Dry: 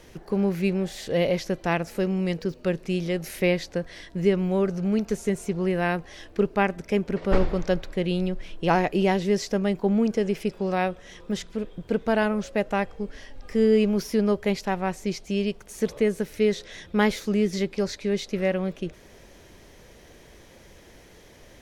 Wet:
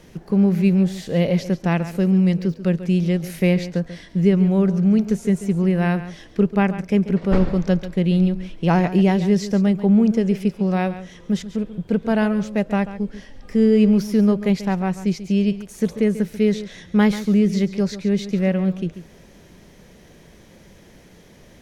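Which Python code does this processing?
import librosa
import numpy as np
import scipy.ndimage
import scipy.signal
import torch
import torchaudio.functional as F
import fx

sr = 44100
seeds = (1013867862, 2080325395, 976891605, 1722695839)

p1 = fx.peak_eq(x, sr, hz=180.0, db=10.0, octaves=0.94)
y = p1 + fx.echo_single(p1, sr, ms=139, db=-13.5, dry=0)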